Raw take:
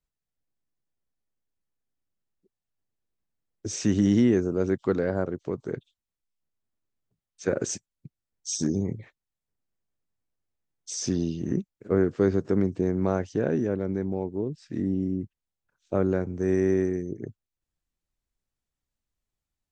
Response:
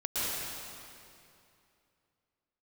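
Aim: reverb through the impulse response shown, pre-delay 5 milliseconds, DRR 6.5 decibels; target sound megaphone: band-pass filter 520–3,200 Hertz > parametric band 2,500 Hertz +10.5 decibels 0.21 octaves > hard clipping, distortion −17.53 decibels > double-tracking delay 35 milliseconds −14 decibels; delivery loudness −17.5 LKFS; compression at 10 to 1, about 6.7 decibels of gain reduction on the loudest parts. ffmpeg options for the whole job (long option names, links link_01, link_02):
-filter_complex "[0:a]acompressor=threshold=-23dB:ratio=10,asplit=2[link_01][link_02];[1:a]atrim=start_sample=2205,adelay=5[link_03];[link_02][link_03]afir=irnorm=-1:irlink=0,volume=-15dB[link_04];[link_01][link_04]amix=inputs=2:normalize=0,highpass=520,lowpass=3200,equalizer=frequency=2500:width_type=o:width=0.21:gain=10.5,asoftclip=type=hard:threshold=-27.5dB,asplit=2[link_05][link_06];[link_06]adelay=35,volume=-14dB[link_07];[link_05][link_07]amix=inputs=2:normalize=0,volume=20.5dB"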